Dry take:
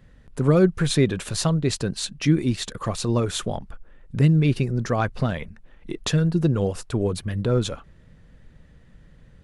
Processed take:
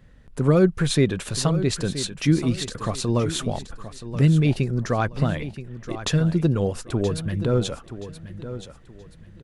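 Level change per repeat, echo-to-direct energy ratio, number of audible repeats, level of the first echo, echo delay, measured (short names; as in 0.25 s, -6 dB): -11.0 dB, -12.0 dB, 3, -12.5 dB, 0.975 s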